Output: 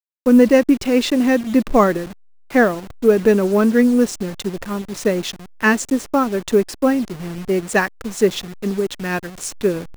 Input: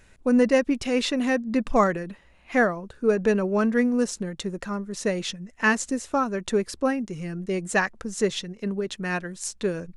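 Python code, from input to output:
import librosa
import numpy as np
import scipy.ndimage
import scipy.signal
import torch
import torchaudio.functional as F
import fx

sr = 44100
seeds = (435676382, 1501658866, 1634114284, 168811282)

y = fx.delta_hold(x, sr, step_db=-34.5)
y = fx.dynamic_eq(y, sr, hz=320.0, q=1.2, threshold_db=-34.0, ratio=4.0, max_db=6)
y = y * 10.0 ** (4.5 / 20.0)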